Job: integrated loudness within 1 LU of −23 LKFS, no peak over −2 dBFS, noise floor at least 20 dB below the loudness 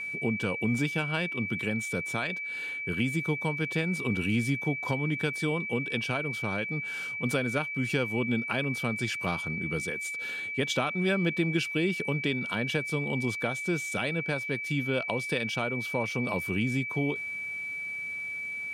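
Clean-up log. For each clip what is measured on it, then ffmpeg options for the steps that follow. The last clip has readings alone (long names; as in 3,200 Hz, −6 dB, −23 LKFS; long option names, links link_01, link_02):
interfering tone 2,300 Hz; level of the tone −33 dBFS; integrated loudness −29.5 LKFS; sample peak −12.5 dBFS; target loudness −23.0 LKFS
→ -af "bandreject=frequency=2300:width=30"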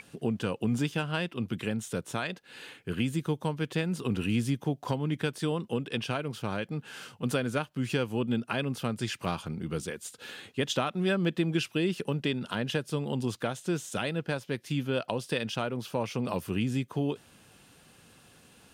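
interfering tone none found; integrated loudness −32.0 LKFS; sample peak −13.5 dBFS; target loudness −23.0 LKFS
→ -af "volume=9dB"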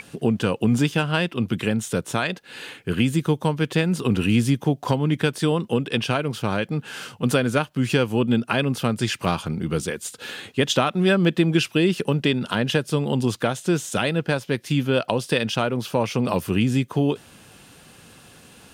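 integrated loudness −23.0 LKFS; sample peak −4.5 dBFS; background noise floor −50 dBFS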